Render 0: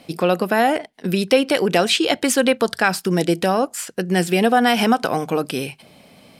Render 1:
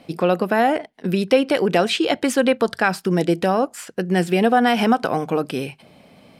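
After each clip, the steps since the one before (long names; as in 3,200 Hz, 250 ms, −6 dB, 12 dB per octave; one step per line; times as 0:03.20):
high-shelf EQ 3,500 Hz −9 dB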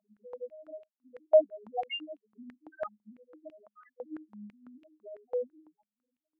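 vocoder with an arpeggio as carrier minor triad, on G#3, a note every 238 ms
spectral peaks only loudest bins 1
high-pass on a step sequencer 6 Hz 790–2,700 Hz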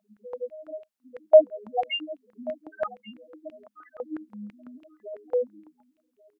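single-tap delay 1,135 ms −20 dB
level +7 dB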